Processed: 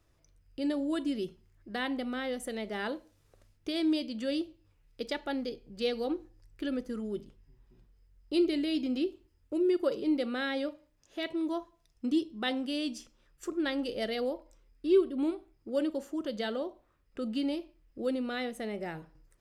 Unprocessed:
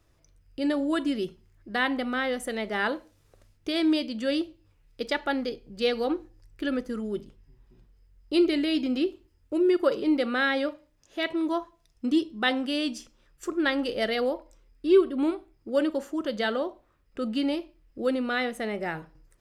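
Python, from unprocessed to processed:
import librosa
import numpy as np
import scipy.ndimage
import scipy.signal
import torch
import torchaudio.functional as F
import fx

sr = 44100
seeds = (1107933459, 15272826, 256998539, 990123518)

y = fx.dynamic_eq(x, sr, hz=1400.0, q=0.75, threshold_db=-41.0, ratio=4.0, max_db=-7)
y = F.gain(torch.from_numpy(y), -4.0).numpy()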